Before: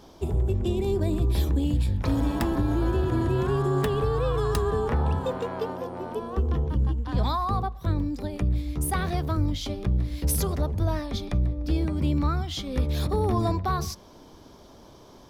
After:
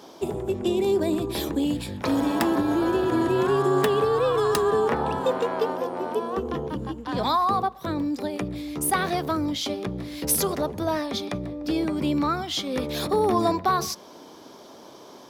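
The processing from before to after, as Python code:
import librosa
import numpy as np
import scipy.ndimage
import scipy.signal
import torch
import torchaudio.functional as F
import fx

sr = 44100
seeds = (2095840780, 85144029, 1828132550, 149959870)

y = scipy.signal.sosfilt(scipy.signal.butter(2, 260.0, 'highpass', fs=sr, output='sos'), x)
y = y * librosa.db_to_amplitude(6.0)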